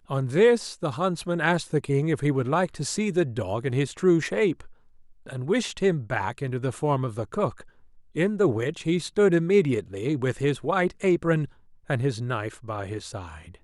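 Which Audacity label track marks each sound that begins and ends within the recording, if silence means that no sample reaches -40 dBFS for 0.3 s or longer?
5.260000	7.620000	sound
8.150000	11.480000	sound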